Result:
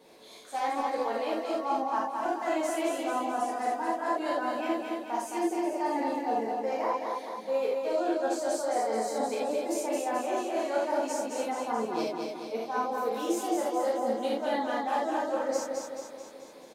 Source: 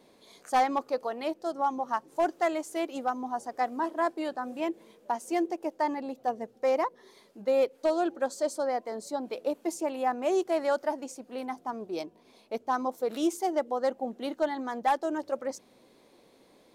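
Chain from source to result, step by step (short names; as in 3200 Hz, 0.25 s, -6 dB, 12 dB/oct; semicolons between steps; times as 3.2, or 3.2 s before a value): low shelf 160 Hz -9 dB; reverse; compressor, threshold -34 dBFS, peak gain reduction 12.5 dB; reverse; feedback echo 0.217 s, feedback 56%, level -4 dB; non-linear reverb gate 0.11 s flat, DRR -5.5 dB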